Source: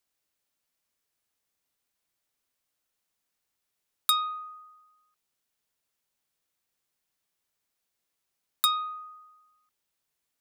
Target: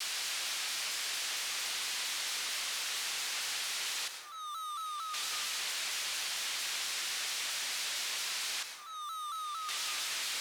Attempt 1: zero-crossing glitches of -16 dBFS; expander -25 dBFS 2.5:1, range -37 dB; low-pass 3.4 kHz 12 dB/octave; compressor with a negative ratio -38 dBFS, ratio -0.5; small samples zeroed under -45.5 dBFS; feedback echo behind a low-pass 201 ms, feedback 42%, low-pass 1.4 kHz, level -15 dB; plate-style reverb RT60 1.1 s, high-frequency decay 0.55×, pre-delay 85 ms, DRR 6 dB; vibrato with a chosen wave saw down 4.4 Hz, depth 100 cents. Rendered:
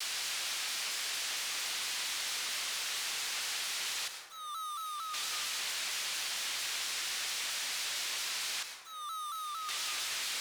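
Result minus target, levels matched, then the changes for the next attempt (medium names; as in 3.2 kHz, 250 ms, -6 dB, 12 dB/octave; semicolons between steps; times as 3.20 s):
small samples zeroed: distortion +9 dB
change: small samples zeroed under -52 dBFS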